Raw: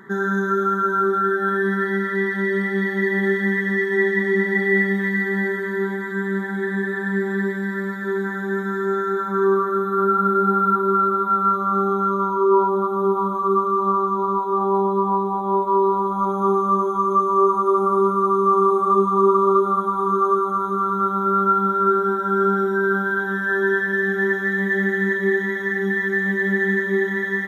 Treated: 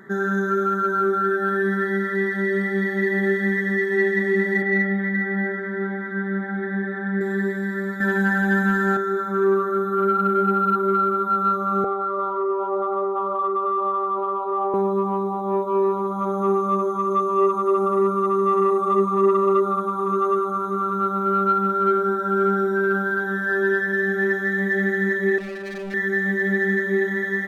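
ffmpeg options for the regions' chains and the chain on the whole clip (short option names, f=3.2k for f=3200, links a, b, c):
-filter_complex "[0:a]asettb=1/sr,asplit=3[a][b][c];[a]atrim=end=4.624[d];[b]atrim=start=4.62:end=7.21,asetpts=PTS-STARTPTS,afade=t=in:d=0.004:c=qsin,afade=t=out:st=2.586:d=0.004:c=qsin,lowpass=2.5k,aecho=1:1:3.7:0.42,atrim=end_sample=114219[e];[c]atrim=start=7.206[f];[d][e]acrossfade=d=0.004:c1=hsin:c2=qsin[g];[g][f]acrossfade=d=0.004:c1=qsin:c2=hsin,asettb=1/sr,asplit=3[h][i][j];[h]atrim=end=8.004[k];[i]atrim=start=8:end=8.97,asetpts=PTS-STARTPTS,afade=t=in:d=0.004:c=qsin,afade=t=out:st=0.966:d=0.004:c=qsin,aecho=1:1:3.9:0.63,atrim=end_sample=42777,acontrast=57[l];[j]atrim=start=8.966[m];[k][l]acrossfade=d=0.004:c1=hsin:c2=qsin[n];[n][m]acrossfade=d=0.004:c1=qsin:c2=hsin,asettb=1/sr,asplit=3[o][p][q];[o]atrim=end=11.844[r];[p]atrim=start=11.84:end=14.74,asetpts=PTS-STARTPTS,afade=t=in:d=0.004:c=qsin,afade=t=out:st=2.896:d=0.004:c=qsin,acompressor=threshold=-19dB:ratio=6:attack=3.2:release=140:knee=1:detection=peak,highpass=400,equalizer=f=490:t=q:w=4:g=10,equalizer=f=710:t=q:w=4:g=10,equalizer=f=1.2k:t=q:w=4:g=5,equalizer=f=1.7k:t=q:w=4:g=-8,lowpass=f=3.4k:w=0.5412,lowpass=f=3.4k:w=1.3066[s];[q]atrim=start=14.736[t];[r][s]acrossfade=d=0.004:c1=hsin:c2=qsin[u];[u][t]acrossfade=d=0.004:c1=qsin:c2=hsin,asettb=1/sr,asplit=3[v][w][x];[v]atrim=end=25.384[y];[w]atrim=start=25.38:end=25.94,asetpts=PTS-STARTPTS,afade=t=in:d=0.004:c=qsin,afade=t=out:st=0.556:d=0.004:c=qsin,lowpass=1.3k,asoftclip=type=hard:threshold=-29dB[z];[x]atrim=start=25.936[aa];[y][z]acrossfade=d=0.004:c1=hsin:c2=qsin[ab];[ab][aa]acrossfade=d=0.004:c1=qsin:c2=hsin,acontrast=20,equalizer=f=630:t=o:w=0.33:g=8,equalizer=f=1k:t=o:w=0.33:g=-8,equalizer=f=3.15k:t=o:w=0.33:g=-4,volume=-5.5dB"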